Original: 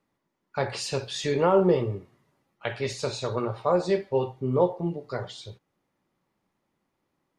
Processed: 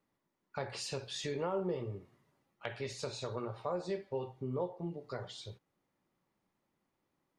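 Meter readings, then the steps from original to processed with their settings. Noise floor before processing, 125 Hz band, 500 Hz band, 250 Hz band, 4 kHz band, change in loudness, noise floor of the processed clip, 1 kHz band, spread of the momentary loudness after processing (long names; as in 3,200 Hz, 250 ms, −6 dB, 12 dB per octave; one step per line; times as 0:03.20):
−79 dBFS, −11.5 dB, −13.5 dB, −13.0 dB, −8.5 dB, −13.0 dB, −84 dBFS, −13.5 dB, 10 LU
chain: downward compressor 2 to 1, threshold −35 dBFS, peak gain reduction 10.5 dB
level −5 dB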